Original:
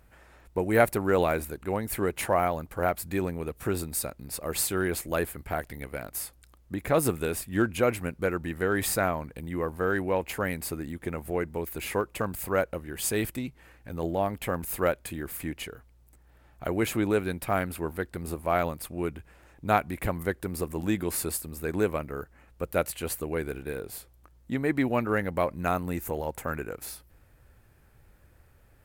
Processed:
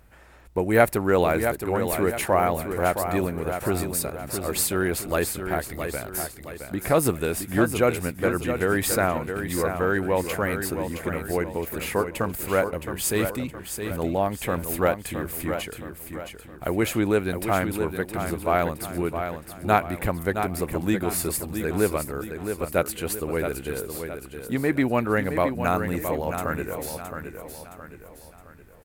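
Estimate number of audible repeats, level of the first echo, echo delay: 4, −7.5 dB, 667 ms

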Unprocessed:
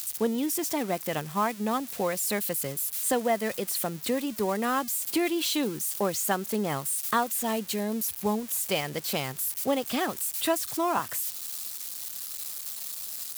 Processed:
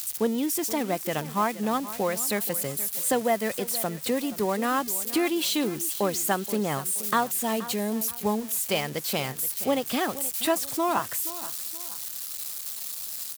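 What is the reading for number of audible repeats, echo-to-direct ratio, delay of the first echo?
2, −15.0 dB, 476 ms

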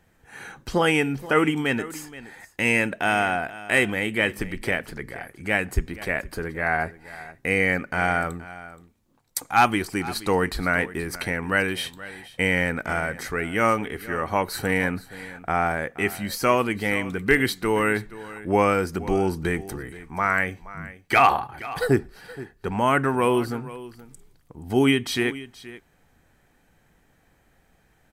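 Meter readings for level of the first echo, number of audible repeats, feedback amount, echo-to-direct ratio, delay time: −17.0 dB, 1, repeats not evenly spaced, −17.0 dB, 475 ms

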